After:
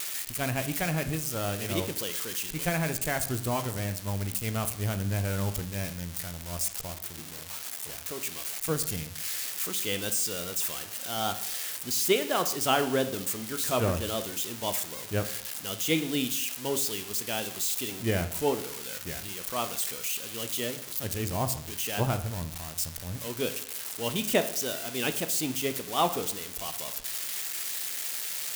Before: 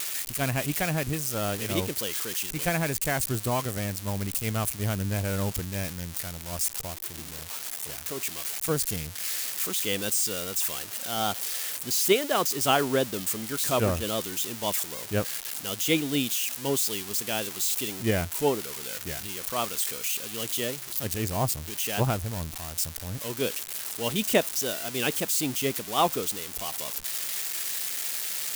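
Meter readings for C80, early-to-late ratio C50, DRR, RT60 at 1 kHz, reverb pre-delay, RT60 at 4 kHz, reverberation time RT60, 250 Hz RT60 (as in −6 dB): 15.0 dB, 12.5 dB, 8.5 dB, 0.70 s, 7 ms, 0.65 s, 0.70 s, 0.65 s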